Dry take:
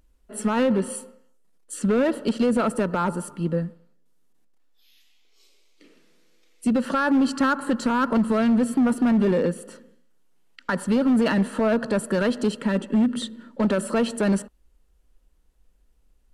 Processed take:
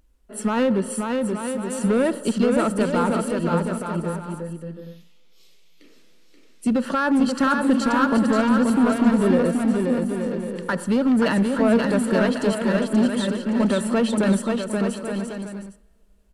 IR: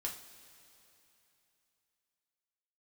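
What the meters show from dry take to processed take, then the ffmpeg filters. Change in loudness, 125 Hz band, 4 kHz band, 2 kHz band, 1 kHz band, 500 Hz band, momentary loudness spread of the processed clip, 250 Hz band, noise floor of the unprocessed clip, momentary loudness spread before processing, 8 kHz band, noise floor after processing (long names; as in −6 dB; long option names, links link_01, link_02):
+1.5 dB, +3.0 dB, +3.0 dB, +3.0 dB, +3.0 dB, +3.0 dB, 10 LU, +3.0 dB, −62 dBFS, 9 LU, +3.0 dB, −52 dBFS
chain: -filter_complex "[0:a]aecho=1:1:530|874.5|1098|1244|1339:0.631|0.398|0.251|0.158|0.1,asplit=2[link_01][link_02];[1:a]atrim=start_sample=2205[link_03];[link_02][link_03]afir=irnorm=-1:irlink=0,volume=-19dB[link_04];[link_01][link_04]amix=inputs=2:normalize=0"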